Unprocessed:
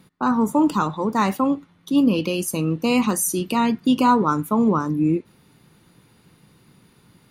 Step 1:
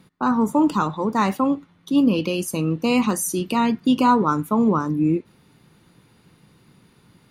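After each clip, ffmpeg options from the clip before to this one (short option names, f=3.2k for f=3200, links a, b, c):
-af "highshelf=f=9.8k:g=-6"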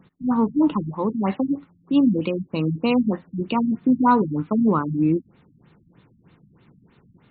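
-af "afftfilt=real='re*lt(b*sr/1024,250*pow(4500/250,0.5+0.5*sin(2*PI*3.2*pts/sr)))':imag='im*lt(b*sr/1024,250*pow(4500/250,0.5+0.5*sin(2*PI*3.2*pts/sr)))':win_size=1024:overlap=0.75"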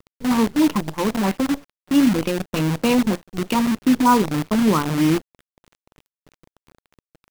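-af "acrusher=bits=5:dc=4:mix=0:aa=0.000001,volume=1.5dB"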